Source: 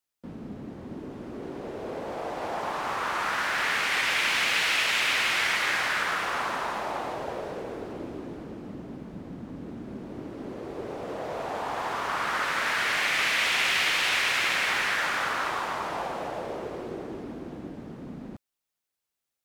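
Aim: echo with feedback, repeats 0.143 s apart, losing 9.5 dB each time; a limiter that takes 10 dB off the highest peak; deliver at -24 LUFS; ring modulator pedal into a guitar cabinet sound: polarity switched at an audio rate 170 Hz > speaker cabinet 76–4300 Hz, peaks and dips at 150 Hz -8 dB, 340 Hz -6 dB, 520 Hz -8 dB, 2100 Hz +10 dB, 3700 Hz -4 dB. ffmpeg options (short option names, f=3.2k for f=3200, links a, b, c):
-af "alimiter=limit=-22dB:level=0:latency=1,aecho=1:1:143|286|429|572:0.335|0.111|0.0365|0.012,aeval=exprs='val(0)*sgn(sin(2*PI*170*n/s))':c=same,highpass=76,equalizer=f=150:t=q:w=4:g=-8,equalizer=f=340:t=q:w=4:g=-6,equalizer=f=520:t=q:w=4:g=-8,equalizer=f=2.1k:t=q:w=4:g=10,equalizer=f=3.7k:t=q:w=4:g=-4,lowpass=f=4.3k:w=0.5412,lowpass=f=4.3k:w=1.3066,volume=3dB"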